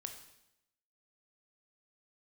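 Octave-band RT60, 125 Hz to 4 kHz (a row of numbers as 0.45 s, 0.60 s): 0.85 s, 0.90 s, 0.85 s, 0.80 s, 0.80 s, 0.80 s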